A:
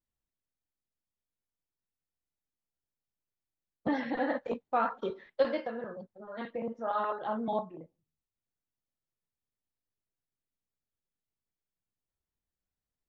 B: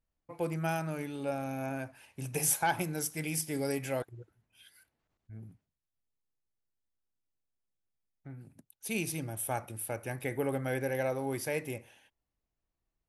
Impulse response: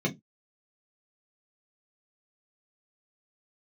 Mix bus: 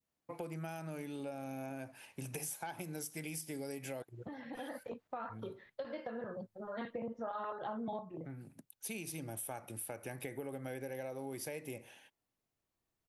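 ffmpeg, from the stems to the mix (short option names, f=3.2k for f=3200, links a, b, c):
-filter_complex "[0:a]equalizer=f=110:t=o:w=0.77:g=9.5,acompressor=threshold=-31dB:ratio=4,adelay=400,volume=2dB[a];[1:a]highpass=140,adynamicequalizer=threshold=0.00282:dfrequency=1400:dqfactor=1:tfrequency=1400:tqfactor=1:attack=5:release=100:ratio=0.375:range=2.5:mode=cutabove:tftype=bell,acompressor=threshold=-40dB:ratio=2.5,volume=2dB,asplit=2[b][c];[c]apad=whole_len=594659[d];[a][d]sidechaincompress=threshold=-51dB:ratio=6:attack=7.8:release=1430[e];[e][b]amix=inputs=2:normalize=0,acompressor=threshold=-40dB:ratio=3"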